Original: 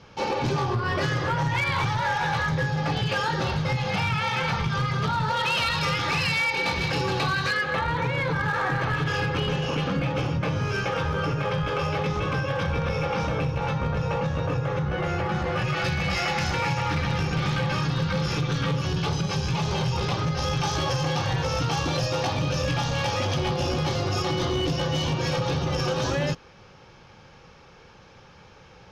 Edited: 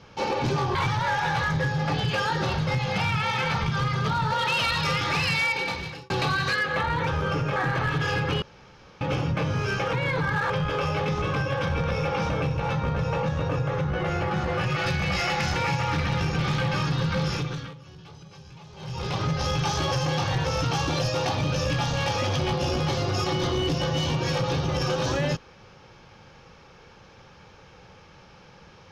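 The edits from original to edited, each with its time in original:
0.75–1.73 s: delete
6.46–7.08 s: fade out
8.05–8.62 s: swap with 10.99–11.48 s
9.48–10.07 s: room tone
18.24–20.23 s: dip -20 dB, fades 0.49 s

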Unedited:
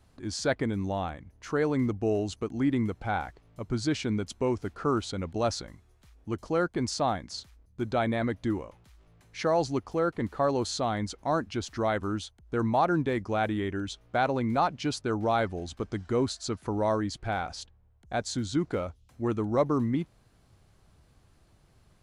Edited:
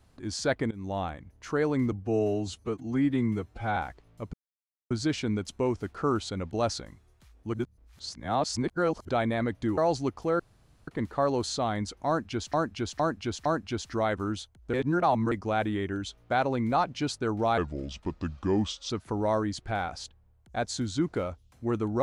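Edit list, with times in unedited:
0.71–0.98 s: fade in, from -18.5 dB
1.92–3.15 s: stretch 1.5×
3.72 s: insert silence 0.57 s
6.35–7.90 s: reverse
8.59–9.47 s: delete
10.09 s: insert room tone 0.48 s
11.29–11.75 s: loop, 4 plays
12.57–13.15 s: reverse
15.41–16.47 s: speed 80%

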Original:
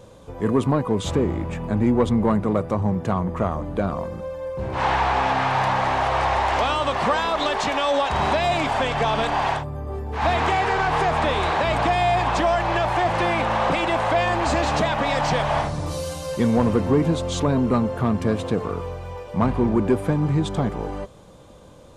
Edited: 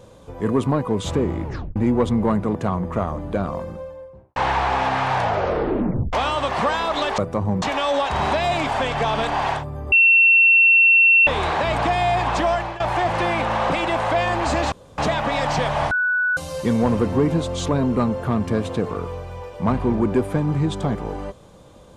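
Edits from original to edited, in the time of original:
1.45 s: tape stop 0.31 s
2.55–2.99 s: move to 7.62 s
4.03–4.80 s: studio fade out
5.58 s: tape stop 0.99 s
9.92–11.27 s: bleep 2.71 kHz -10 dBFS
12.53–12.80 s: fade out, to -18 dB
14.72 s: insert room tone 0.26 s
15.65–16.11 s: bleep 1.48 kHz -17 dBFS

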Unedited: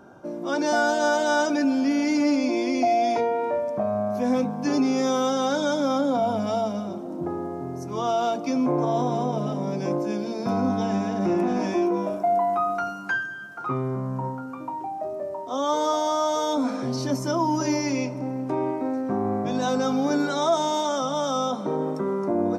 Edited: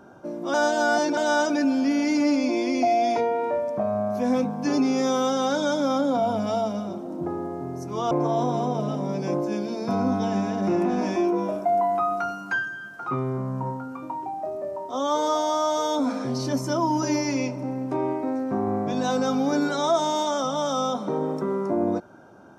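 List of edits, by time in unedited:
0.54–1.17 s: reverse
8.11–8.69 s: delete

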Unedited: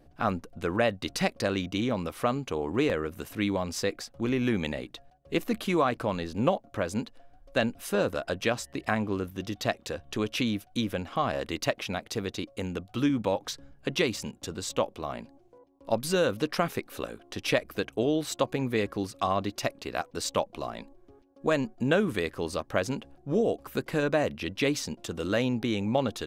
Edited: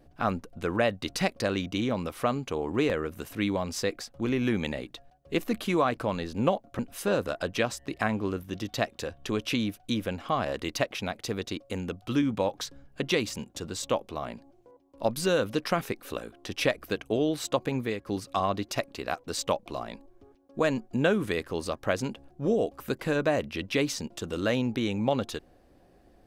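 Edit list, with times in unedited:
6.79–7.66 s: delete
18.64–18.93 s: fade out, to -12.5 dB

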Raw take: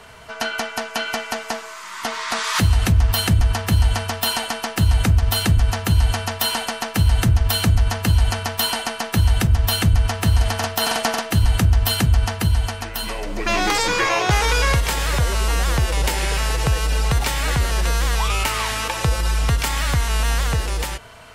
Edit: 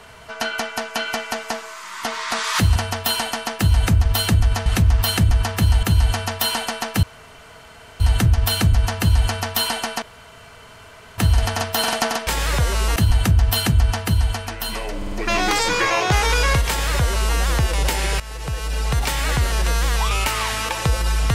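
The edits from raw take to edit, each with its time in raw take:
2.76–3.93 s: move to 5.83 s
7.03 s: insert room tone 0.97 s
9.05–10.21 s: room tone
13.31 s: stutter 0.05 s, 4 plays
14.87–15.56 s: copy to 11.30 s
16.39–17.33 s: fade in, from -16 dB

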